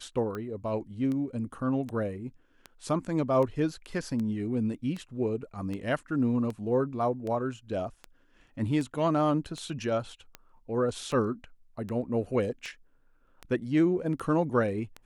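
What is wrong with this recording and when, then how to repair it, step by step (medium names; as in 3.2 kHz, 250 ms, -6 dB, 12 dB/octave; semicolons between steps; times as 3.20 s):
tick 78 rpm -24 dBFS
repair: de-click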